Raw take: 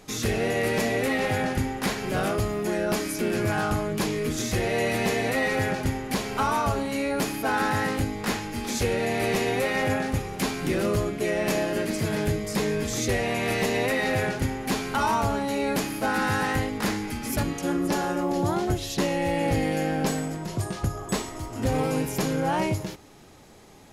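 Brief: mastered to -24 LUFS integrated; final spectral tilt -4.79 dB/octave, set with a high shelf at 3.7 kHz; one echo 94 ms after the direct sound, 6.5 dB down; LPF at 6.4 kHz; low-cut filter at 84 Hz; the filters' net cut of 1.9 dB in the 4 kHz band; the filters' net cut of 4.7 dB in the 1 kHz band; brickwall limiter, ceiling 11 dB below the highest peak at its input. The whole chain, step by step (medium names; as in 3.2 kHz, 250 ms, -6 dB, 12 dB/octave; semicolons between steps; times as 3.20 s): high-pass 84 Hz; low-pass 6.4 kHz; peaking EQ 1 kHz -6.5 dB; treble shelf 3.7 kHz +5.5 dB; peaking EQ 4 kHz -5 dB; peak limiter -25 dBFS; delay 94 ms -6.5 dB; trim +8.5 dB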